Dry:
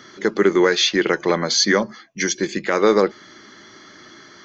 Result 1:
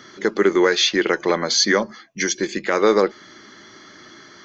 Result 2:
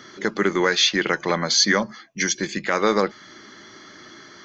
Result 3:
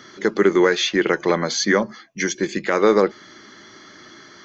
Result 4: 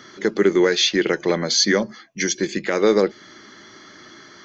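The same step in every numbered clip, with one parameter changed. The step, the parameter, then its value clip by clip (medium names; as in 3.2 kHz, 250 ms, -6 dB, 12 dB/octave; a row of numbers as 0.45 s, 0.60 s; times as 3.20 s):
dynamic bell, frequency: 140 Hz, 390 Hz, 4.7 kHz, 1.1 kHz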